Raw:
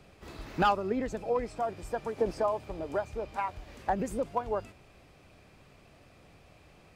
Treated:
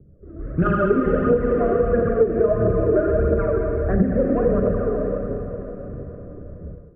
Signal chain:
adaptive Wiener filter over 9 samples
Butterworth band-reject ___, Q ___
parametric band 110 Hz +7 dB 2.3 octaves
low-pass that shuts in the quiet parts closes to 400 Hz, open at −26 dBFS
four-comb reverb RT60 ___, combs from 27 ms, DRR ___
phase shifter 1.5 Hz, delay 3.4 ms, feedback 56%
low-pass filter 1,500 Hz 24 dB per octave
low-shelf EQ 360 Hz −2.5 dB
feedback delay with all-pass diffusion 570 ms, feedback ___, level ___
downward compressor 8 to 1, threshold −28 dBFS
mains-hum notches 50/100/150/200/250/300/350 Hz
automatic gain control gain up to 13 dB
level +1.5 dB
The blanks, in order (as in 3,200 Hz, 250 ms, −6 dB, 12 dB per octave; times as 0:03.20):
880 Hz, 1.1, 2.9 s, −1.5 dB, 44%, −13 dB